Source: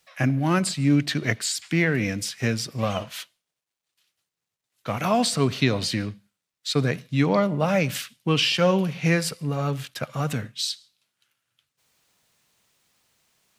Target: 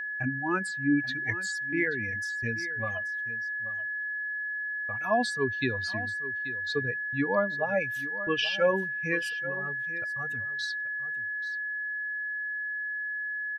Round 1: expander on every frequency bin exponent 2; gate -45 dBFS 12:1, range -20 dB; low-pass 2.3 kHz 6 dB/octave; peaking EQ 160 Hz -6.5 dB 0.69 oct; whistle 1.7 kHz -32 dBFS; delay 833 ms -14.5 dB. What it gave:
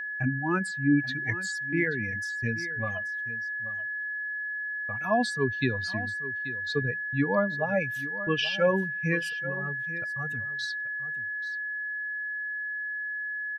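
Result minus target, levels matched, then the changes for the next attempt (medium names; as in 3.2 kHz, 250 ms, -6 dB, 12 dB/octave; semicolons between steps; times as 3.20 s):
125 Hz band +5.5 dB
change: peaking EQ 160 Hz -16.5 dB 0.69 oct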